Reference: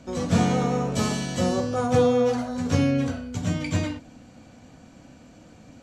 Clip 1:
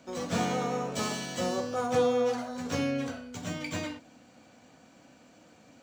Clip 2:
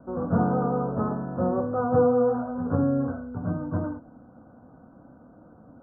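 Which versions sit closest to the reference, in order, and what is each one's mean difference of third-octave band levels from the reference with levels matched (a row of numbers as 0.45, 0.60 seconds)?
1, 2; 3.5, 8.5 decibels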